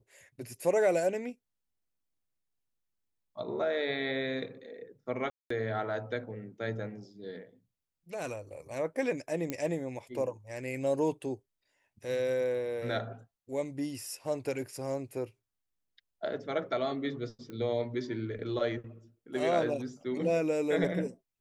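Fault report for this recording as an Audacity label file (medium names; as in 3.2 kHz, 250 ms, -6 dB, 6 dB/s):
5.300000	5.500000	dropout 204 ms
9.500000	9.500000	pop -19 dBFS
17.500000	17.500000	pop -31 dBFS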